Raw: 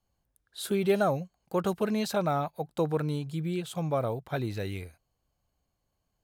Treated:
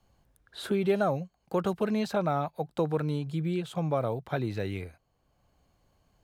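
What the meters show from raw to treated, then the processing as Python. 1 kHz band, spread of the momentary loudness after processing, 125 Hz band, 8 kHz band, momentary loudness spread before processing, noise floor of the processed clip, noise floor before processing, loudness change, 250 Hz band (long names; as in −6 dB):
−0.5 dB, 8 LU, +0.5 dB, −7.5 dB, 10 LU, −73 dBFS, −80 dBFS, 0.0 dB, +0.5 dB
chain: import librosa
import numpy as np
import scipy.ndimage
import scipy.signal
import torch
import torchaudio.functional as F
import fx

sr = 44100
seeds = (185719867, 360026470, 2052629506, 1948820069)

y = fx.high_shelf(x, sr, hz=6100.0, db=-9.5)
y = fx.band_squash(y, sr, depth_pct=40)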